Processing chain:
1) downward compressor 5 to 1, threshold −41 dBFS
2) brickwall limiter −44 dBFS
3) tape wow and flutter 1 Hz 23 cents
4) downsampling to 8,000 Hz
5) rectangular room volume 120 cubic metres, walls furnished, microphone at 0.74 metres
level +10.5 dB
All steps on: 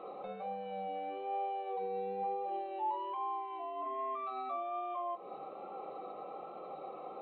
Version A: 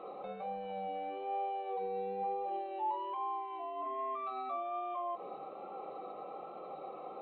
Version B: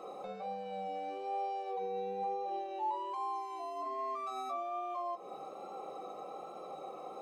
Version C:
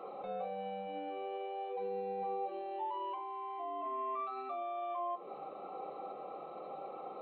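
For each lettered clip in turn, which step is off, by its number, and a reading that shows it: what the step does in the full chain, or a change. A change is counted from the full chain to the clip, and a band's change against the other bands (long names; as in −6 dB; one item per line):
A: 1, average gain reduction 6.5 dB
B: 4, 4 kHz band +3.5 dB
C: 3, 1 kHz band −2.0 dB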